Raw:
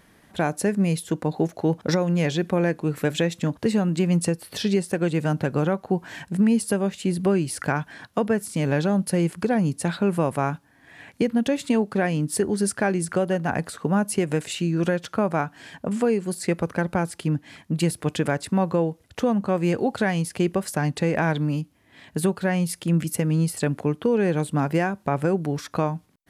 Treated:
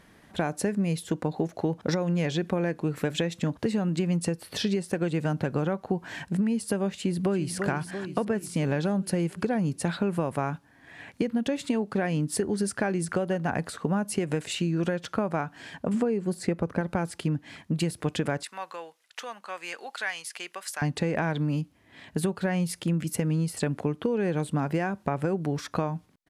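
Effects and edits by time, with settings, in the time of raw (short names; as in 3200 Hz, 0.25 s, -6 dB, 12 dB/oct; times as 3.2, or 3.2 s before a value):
6.96–7.56 echo throw 0.34 s, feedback 60%, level -10.5 dB
15.94–16.81 tilt shelf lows +4 dB, about 1300 Hz
18.43–20.82 HPF 1400 Hz
whole clip: high shelf 11000 Hz -9 dB; compressor, threshold -23 dBFS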